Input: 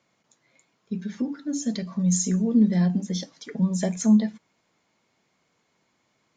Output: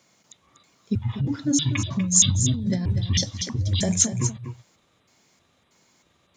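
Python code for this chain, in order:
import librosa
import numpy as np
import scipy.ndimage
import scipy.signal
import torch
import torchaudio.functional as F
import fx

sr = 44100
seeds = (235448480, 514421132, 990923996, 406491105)

p1 = fx.pitch_trill(x, sr, semitones=-10.5, every_ms=317)
p2 = fx.over_compress(p1, sr, threshold_db=-26.0, ratio=-1.0)
p3 = fx.bass_treble(p2, sr, bass_db=1, treble_db=10)
p4 = p3 + fx.echo_single(p3, sr, ms=243, db=-10.0, dry=0)
y = p4 * 10.0 ** (2.0 / 20.0)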